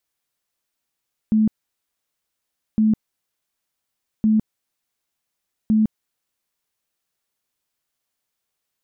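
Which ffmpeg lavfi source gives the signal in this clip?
-f lavfi -i "aevalsrc='0.224*sin(2*PI*217*mod(t,1.46))*lt(mod(t,1.46),34/217)':d=5.84:s=44100"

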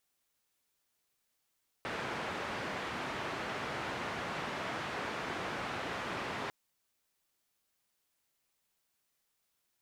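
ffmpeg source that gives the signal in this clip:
-f lavfi -i "anoisesrc=c=white:d=4.65:r=44100:seed=1,highpass=f=91,lowpass=f=1700,volume=-22.8dB"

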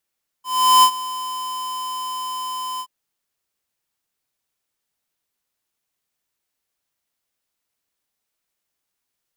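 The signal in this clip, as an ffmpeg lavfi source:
-f lavfi -i "aevalsrc='0.316*(2*lt(mod(1020*t,1),0.5)-1)':d=2.425:s=44100,afade=t=in:d=0.39,afade=t=out:st=0.39:d=0.074:silence=0.133,afade=t=out:st=2.36:d=0.065"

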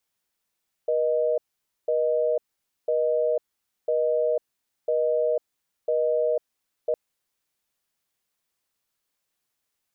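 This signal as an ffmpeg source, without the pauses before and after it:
-f lavfi -i "aevalsrc='0.0708*(sin(2*PI*480*t)+sin(2*PI*620*t))*clip(min(mod(t,1),0.5-mod(t,1))/0.005,0,1)':d=6.06:s=44100"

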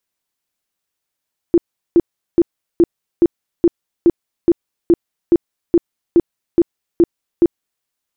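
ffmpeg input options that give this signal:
-f lavfi -i "aevalsrc='0.501*sin(2*PI*341*mod(t,0.42))*lt(mod(t,0.42),13/341)':d=6.3:s=44100"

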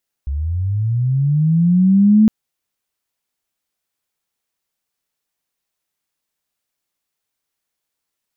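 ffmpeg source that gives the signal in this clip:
-f lavfi -i "aevalsrc='pow(10,(-18.5+12*t/2.01)/20)*sin(2*PI*(66*t+154*t*t/(2*2.01)))':d=2.01:s=44100"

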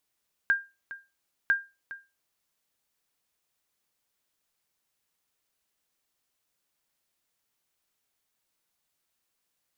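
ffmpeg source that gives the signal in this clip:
-f lavfi -i "aevalsrc='0.168*(sin(2*PI*1600*mod(t,1))*exp(-6.91*mod(t,1)/0.26)+0.15*sin(2*PI*1600*max(mod(t,1)-0.41,0))*exp(-6.91*max(mod(t,1)-0.41,0)/0.26))':d=2:s=44100"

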